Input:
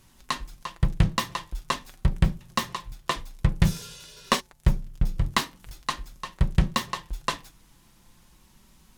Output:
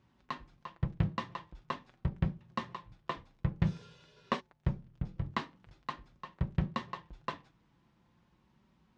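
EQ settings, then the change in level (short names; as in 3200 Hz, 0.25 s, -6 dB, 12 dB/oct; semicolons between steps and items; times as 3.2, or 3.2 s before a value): HPF 84 Hz 12 dB/oct; air absorption 55 m; tape spacing loss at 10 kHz 25 dB; -6.5 dB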